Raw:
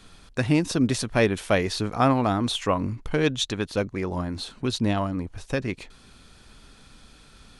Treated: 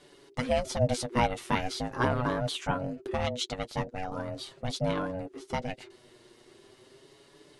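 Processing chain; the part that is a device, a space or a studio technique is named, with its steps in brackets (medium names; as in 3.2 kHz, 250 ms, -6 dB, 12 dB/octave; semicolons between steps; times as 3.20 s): alien voice (ring modulator 370 Hz; flange 0.4 Hz, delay 6.8 ms, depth 1.7 ms, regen +19%)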